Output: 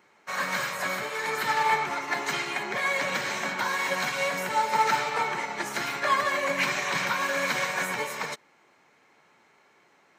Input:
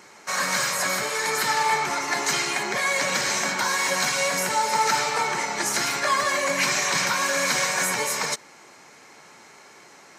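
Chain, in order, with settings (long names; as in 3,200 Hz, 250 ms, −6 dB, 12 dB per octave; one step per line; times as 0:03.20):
flat-topped bell 7,500 Hz −9.5 dB
expander for the loud parts 1.5 to 1, over −42 dBFS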